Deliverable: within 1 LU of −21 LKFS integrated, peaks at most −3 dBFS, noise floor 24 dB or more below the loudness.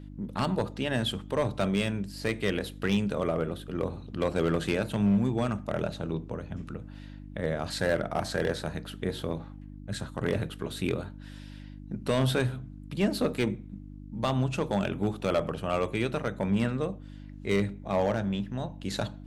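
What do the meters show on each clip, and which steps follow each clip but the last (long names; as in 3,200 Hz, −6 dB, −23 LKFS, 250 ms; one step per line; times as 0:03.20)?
share of clipped samples 0.6%; peaks flattened at −18.5 dBFS; mains hum 50 Hz; hum harmonics up to 300 Hz; level of the hum −42 dBFS; integrated loudness −30.5 LKFS; sample peak −18.5 dBFS; target loudness −21.0 LKFS
→ clipped peaks rebuilt −18.5 dBFS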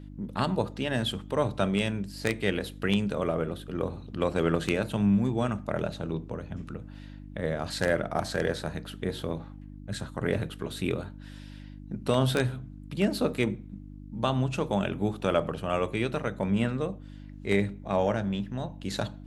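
share of clipped samples 0.0%; mains hum 50 Hz; hum harmonics up to 300 Hz; level of the hum −42 dBFS
→ hum removal 50 Hz, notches 6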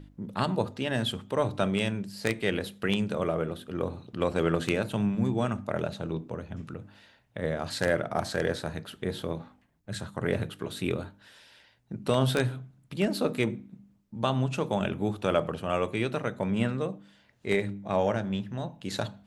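mains hum none found; integrated loudness −30.0 LKFS; sample peak −9.5 dBFS; target loudness −21.0 LKFS
→ level +9 dB
brickwall limiter −3 dBFS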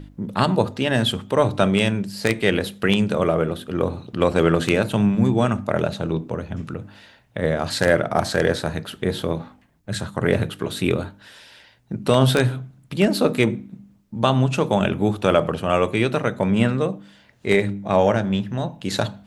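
integrated loudness −21.5 LKFS; sample peak −3.0 dBFS; background noise floor −55 dBFS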